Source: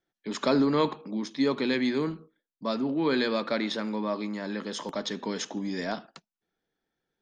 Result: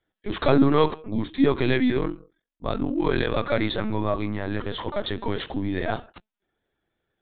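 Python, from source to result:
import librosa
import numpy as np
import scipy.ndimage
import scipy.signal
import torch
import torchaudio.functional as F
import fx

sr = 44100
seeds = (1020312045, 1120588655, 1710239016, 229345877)

y = fx.lpc_vocoder(x, sr, seeds[0], excitation='pitch_kept', order=16)
y = fx.ring_mod(y, sr, carrier_hz=22.0, at=(1.97, 3.37))
y = y * librosa.db_to_amplitude(5.5)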